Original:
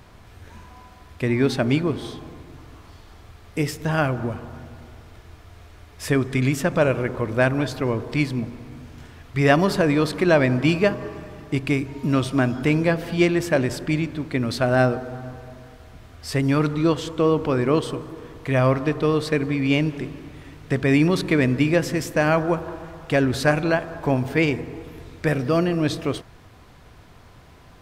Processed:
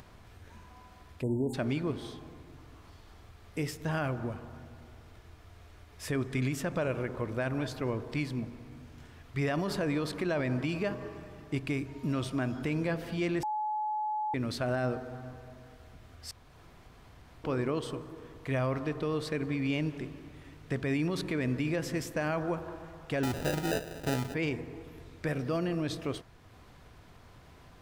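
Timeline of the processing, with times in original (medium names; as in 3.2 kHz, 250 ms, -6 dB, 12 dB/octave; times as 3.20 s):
1.23–1.54 s: spectral selection erased 1–6.7 kHz
13.43–14.34 s: bleep 853 Hz -20.5 dBFS
16.31–17.44 s: room tone
23.23–24.34 s: sample-rate reducer 1.1 kHz
whole clip: peak limiter -13.5 dBFS; upward compressor, threshold -39 dBFS; trim -9 dB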